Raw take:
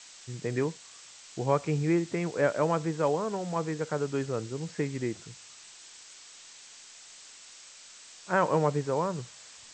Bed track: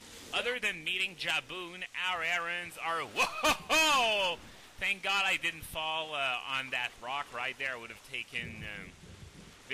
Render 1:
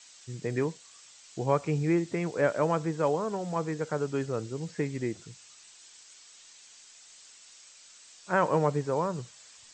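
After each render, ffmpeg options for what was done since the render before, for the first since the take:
-af "afftdn=nr=6:nf=-51"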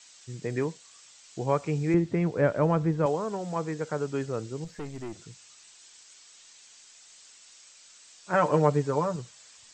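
-filter_complex "[0:a]asettb=1/sr,asplit=3[s0][s1][s2];[s0]atrim=end=1.944[s3];[s1]atrim=start=1.94:end=3.06,asetpts=PTS-STARTPTS,afade=t=in:d=0.004:c=qsin,afade=t=out:st=1.116:d=0.004:c=qsin,aemphasis=mode=reproduction:type=bsi[s4];[s2]atrim=start=3.056[s5];[s3][s4]acrossfade=d=0.004:c1=hsin:c2=qsin[s6];[s6][s5]acrossfade=d=0.004:c1=qsin:c2=hsin,asettb=1/sr,asplit=3[s7][s8][s9];[s7]atrim=end=4.644[s10];[s8]atrim=start=4.64:end=5.13,asetpts=PTS-STARTPTS,afade=t=in:d=0.004:c=qsin,afade=t=out:st=0.486:d=0.004:c=qsin,aeval=exprs='(tanh(44.7*val(0)+0.5)-tanh(0.5))/44.7':c=same[s11];[s9]atrim=start=5.126[s12];[s10][s11]acrossfade=d=0.004:c1=hsin:c2=qsin[s13];[s13][s12]acrossfade=d=0.004:c1=qsin:c2=hsin,asettb=1/sr,asplit=3[s14][s15][s16];[s14]atrim=end=8.334[s17];[s15]atrim=start=8.33:end=9.16,asetpts=PTS-STARTPTS,afade=t=in:d=0.004:c=qsin,afade=t=out:st=0.826:d=0.004:c=qsin,aecho=1:1:6.8:0.65,atrim=end_sample=36603[s18];[s16]atrim=start=9.156[s19];[s17][s18]acrossfade=d=0.004:c1=hsin:c2=qsin[s20];[s20][s19]acrossfade=d=0.004:c1=qsin:c2=hsin"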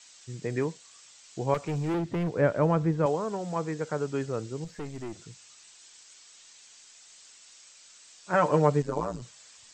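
-filter_complex "[0:a]asettb=1/sr,asplit=3[s0][s1][s2];[s0]atrim=end=1.544[s3];[s1]atrim=start=1.54:end=2.33,asetpts=PTS-STARTPTS,afade=t=in:d=0.004:c=qsin,afade=t=out:st=0.786:d=0.004:c=qsin,asoftclip=type=hard:threshold=0.0501[s4];[s2]atrim=start=2.326[s5];[s3][s4]acrossfade=d=0.004:c1=hsin:c2=qsin[s6];[s6][s5]acrossfade=d=0.004:c1=qsin:c2=hsin,asettb=1/sr,asplit=3[s7][s8][s9];[s7]atrim=end=8.824[s10];[s8]atrim=start=8.82:end=9.22,asetpts=PTS-STARTPTS,afade=t=in:d=0.004:c=qsin,afade=t=out:st=0.396:d=0.004:c=qsin,tremolo=f=110:d=0.919[s11];[s9]atrim=start=9.216[s12];[s10][s11]acrossfade=d=0.004:c1=hsin:c2=qsin[s13];[s13][s12]acrossfade=d=0.004:c1=qsin:c2=hsin"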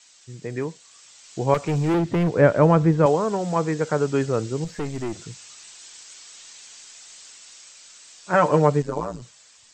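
-af "dynaudnorm=f=220:g=11:m=2.82"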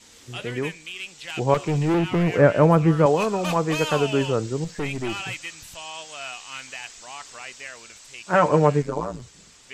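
-filter_complex "[1:a]volume=0.708[s0];[0:a][s0]amix=inputs=2:normalize=0"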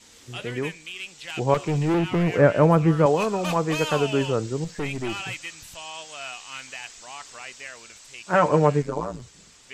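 -af "volume=0.891"

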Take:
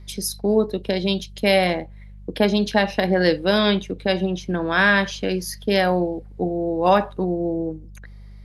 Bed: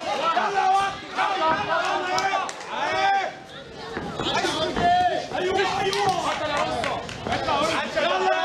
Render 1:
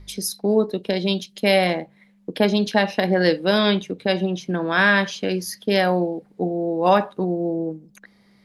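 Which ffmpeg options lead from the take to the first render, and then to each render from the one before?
-af "bandreject=f=50:t=h:w=4,bandreject=f=100:t=h:w=4,bandreject=f=150:t=h:w=4"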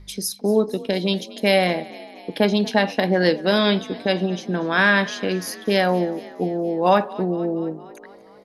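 -filter_complex "[0:a]asplit=7[s0][s1][s2][s3][s4][s5][s6];[s1]adelay=234,afreqshift=39,volume=0.106[s7];[s2]adelay=468,afreqshift=78,volume=0.0676[s8];[s3]adelay=702,afreqshift=117,volume=0.0432[s9];[s4]adelay=936,afreqshift=156,volume=0.0279[s10];[s5]adelay=1170,afreqshift=195,volume=0.0178[s11];[s6]adelay=1404,afreqshift=234,volume=0.0114[s12];[s0][s7][s8][s9][s10][s11][s12]amix=inputs=7:normalize=0"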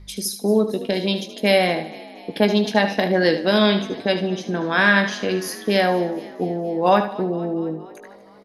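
-filter_complex "[0:a]asplit=2[s0][s1];[s1]adelay=19,volume=0.282[s2];[s0][s2]amix=inputs=2:normalize=0,aecho=1:1:75|150|225:0.299|0.0776|0.0202"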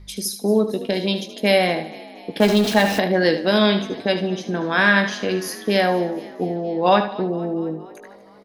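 -filter_complex "[0:a]asettb=1/sr,asplit=3[s0][s1][s2];[s0]atrim=end=2.404[s3];[s1]atrim=start=2.4:end=2.99,asetpts=PTS-STARTPTS,afade=t=in:d=0.004:c=qsin,afade=t=out:st=0.586:d=0.004:c=qsin,aeval=exprs='val(0)+0.5*0.075*sgn(val(0))':c=same[s4];[s2]atrim=start=2.986[s5];[s3][s4]acrossfade=d=0.004:c1=hsin:c2=qsin[s6];[s6][s5]acrossfade=d=0.004:c1=qsin:c2=hsin,asettb=1/sr,asplit=3[s7][s8][s9];[s7]atrim=end=6.564[s10];[s8]atrim=start=6.56:end=7.28,asetpts=PTS-STARTPTS,afade=t=in:d=0.004:c=qsin,afade=t=out:st=0.716:d=0.004:c=qsin,lowpass=f=4200:t=q:w=1.8[s11];[s9]atrim=start=7.276[s12];[s10][s11]acrossfade=d=0.004:c1=hsin:c2=qsin[s13];[s13][s12]acrossfade=d=0.004:c1=qsin:c2=hsin"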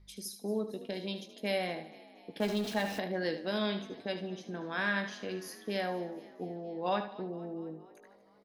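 -af "volume=0.158"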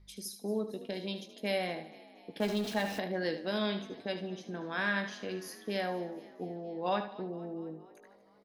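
-af anull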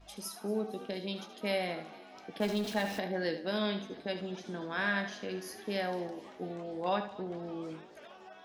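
-filter_complex "[1:a]volume=0.0282[s0];[0:a][s0]amix=inputs=2:normalize=0"

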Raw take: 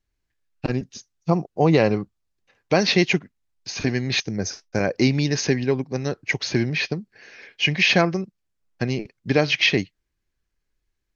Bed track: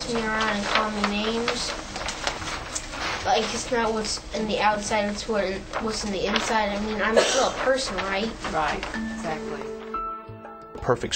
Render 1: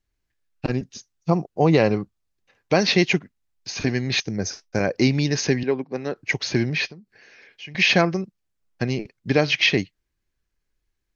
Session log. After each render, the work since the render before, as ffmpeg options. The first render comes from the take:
-filter_complex "[0:a]asettb=1/sr,asplit=3[s0][s1][s2];[s0]atrim=end=5.634[s3];[s1]atrim=start=5.63:end=6.16,asetpts=PTS-STARTPTS,afade=t=in:d=0.004:c=qsin,afade=t=out:st=0.526:d=0.004:c=qsin,highpass=230,lowpass=3200[s4];[s2]atrim=start=6.156[s5];[s3][s4]acrossfade=d=0.004:c1=hsin:c2=qsin[s6];[s6][s5]acrossfade=d=0.004:c1=qsin:c2=hsin,asettb=1/sr,asplit=3[s7][s8][s9];[s7]atrim=end=6.884[s10];[s8]atrim=start=6.88:end=7.75,asetpts=PTS-STARTPTS,afade=t=in:d=0.004:c=qsin,afade=t=out:st=0.866:d=0.004:c=qsin,acompressor=threshold=0.00316:ratio=2:attack=3.2:release=140:knee=1:detection=peak[s11];[s9]atrim=start=7.746[s12];[s10][s11]acrossfade=d=0.004:c1=hsin:c2=qsin[s13];[s13][s12]acrossfade=d=0.004:c1=qsin:c2=hsin"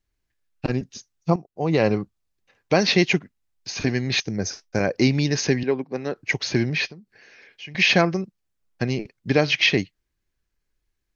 -filter_complex "[0:a]asplit=2[s0][s1];[s0]atrim=end=1.36,asetpts=PTS-STARTPTS,afade=t=out:st=1.356:d=0.004:c=hsin:silence=0.211349[s2];[s1]atrim=start=1.36,asetpts=PTS-STARTPTS,afade=t=in:d=0.51:c=qua:silence=0.211349[s3];[s2][s3]concat=n=2:v=0:a=1"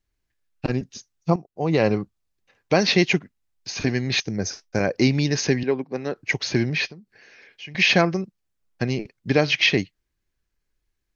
-af anull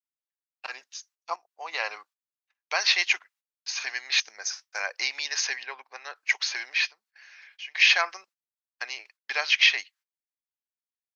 -af "highpass=f=930:w=0.5412,highpass=f=930:w=1.3066,agate=range=0.0708:threshold=0.00141:ratio=16:detection=peak"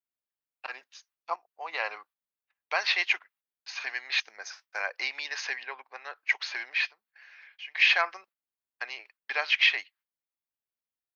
-af "equalizer=f=6300:t=o:w=1.1:g=-14"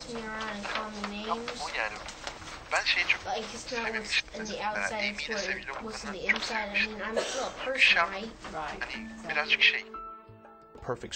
-filter_complex "[1:a]volume=0.266[s0];[0:a][s0]amix=inputs=2:normalize=0"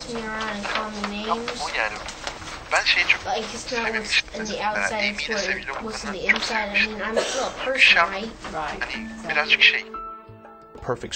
-af "volume=2.37,alimiter=limit=0.708:level=0:latency=1"

